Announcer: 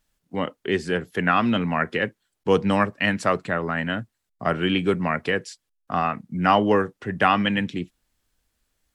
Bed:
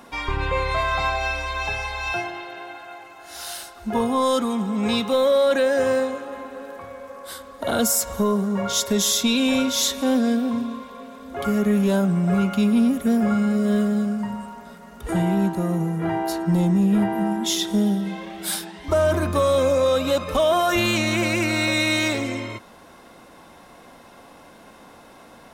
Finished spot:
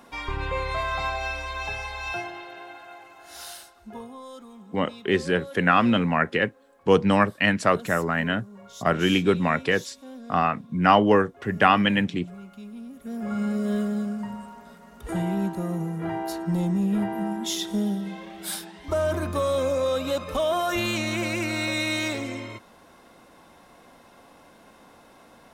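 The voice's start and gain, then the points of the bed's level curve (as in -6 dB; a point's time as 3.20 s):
4.40 s, +1.0 dB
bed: 3.42 s -5 dB
4.22 s -22 dB
12.88 s -22 dB
13.42 s -5.5 dB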